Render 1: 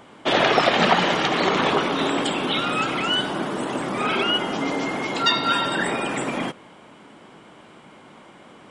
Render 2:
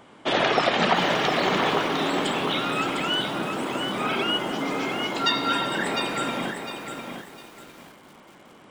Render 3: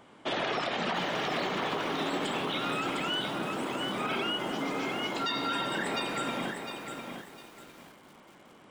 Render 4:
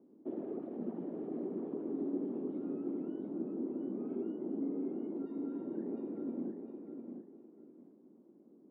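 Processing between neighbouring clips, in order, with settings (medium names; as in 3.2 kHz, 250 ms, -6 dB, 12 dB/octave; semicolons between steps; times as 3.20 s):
bit-crushed delay 704 ms, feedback 35%, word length 7-bit, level -6 dB; trim -3.5 dB
peak limiter -17 dBFS, peak gain reduction 9 dB; trim -5 dB
Butterworth band-pass 290 Hz, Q 1.6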